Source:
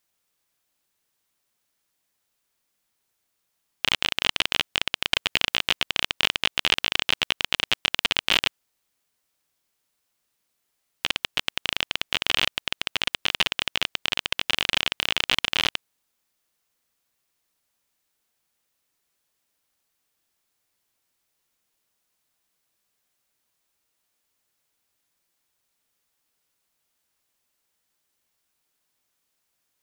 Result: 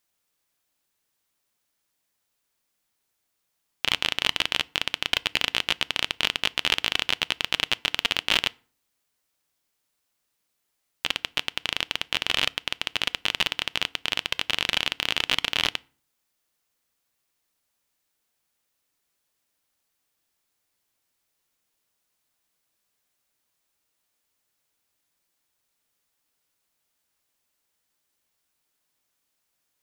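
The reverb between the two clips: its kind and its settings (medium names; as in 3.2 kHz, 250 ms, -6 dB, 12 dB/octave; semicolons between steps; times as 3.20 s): FDN reverb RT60 0.43 s, low-frequency decay 1.35×, high-frequency decay 0.7×, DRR 19.5 dB; trim -1 dB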